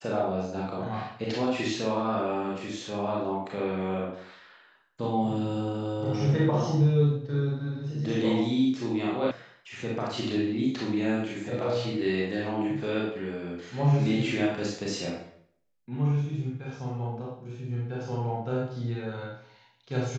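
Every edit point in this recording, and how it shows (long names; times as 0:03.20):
0:09.31: cut off before it has died away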